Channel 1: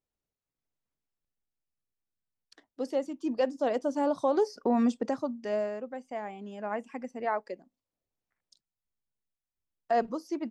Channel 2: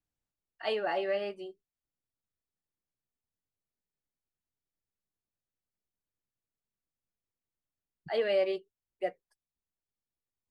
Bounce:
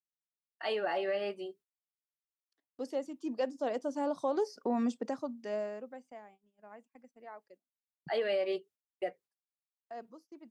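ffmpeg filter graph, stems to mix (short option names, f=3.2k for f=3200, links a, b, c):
-filter_complex "[0:a]highshelf=f=5.3k:g=3,volume=-5.5dB,afade=t=out:st=5.78:d=0.53:silence=0.223872[a];[1:a]alimiter=level_in=1.5dB:limit=-24dB:level=0:latency=1:release=159,volume=-1.5dB,volume=1.5dB[b];[a][b]amix=inputs=2:normalize=0,highpass=140,agate=range=-23dB:threshold=-58dB:ratio=16:detection=peak"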